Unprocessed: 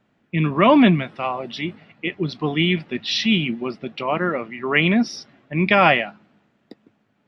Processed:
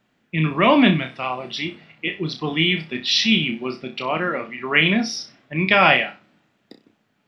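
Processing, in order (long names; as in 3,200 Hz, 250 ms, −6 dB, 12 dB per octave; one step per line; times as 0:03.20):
high-shelf EQ 2,100 Hz +8.5 dB
on a send: flutter between parallel walls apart 5.4 metres, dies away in 0.26 s
on the sum: level −3 dB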